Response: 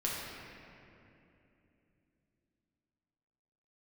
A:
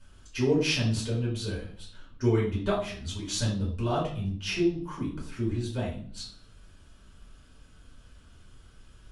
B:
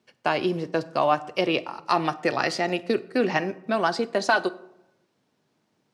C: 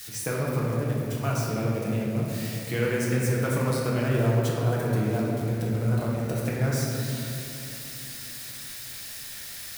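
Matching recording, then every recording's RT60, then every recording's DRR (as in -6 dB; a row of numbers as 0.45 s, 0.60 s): C; 0.50 s, 0.90 s, 2.9 s; -7.0 dB, 13.0 dB, -5.5 dB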